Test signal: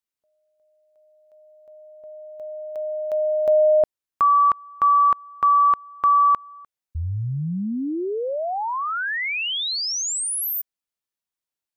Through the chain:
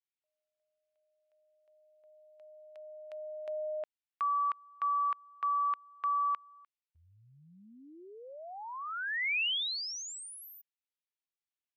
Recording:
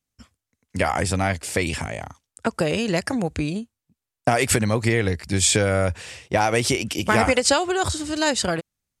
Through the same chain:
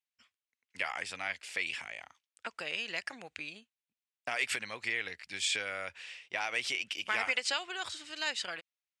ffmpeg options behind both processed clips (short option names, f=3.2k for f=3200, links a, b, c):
-af "bandpass=f=2.6k:t=q:w=1.5:csg=0,volume=-5dB"